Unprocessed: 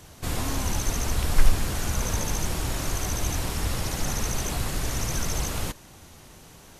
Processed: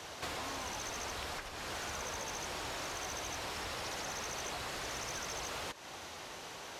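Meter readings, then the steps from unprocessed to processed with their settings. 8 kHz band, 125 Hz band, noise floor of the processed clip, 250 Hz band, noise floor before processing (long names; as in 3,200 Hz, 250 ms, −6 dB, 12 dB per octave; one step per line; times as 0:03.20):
−11.5 dB, −22.0 dB, −48 dBFS, −16.0 dB, −49 dBFS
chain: three-way crossover with the lows and the highs turned down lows −16 dB, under 390 Hz, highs −14 dB, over 6,100 Hz
downward compressor 10 to 1, threshold −43 dBFS, peak gain reduction 19.5 dB
high-pass filter 52 Hz
soft clipping −39 dBFS, distortion −20 dB
level +7 dB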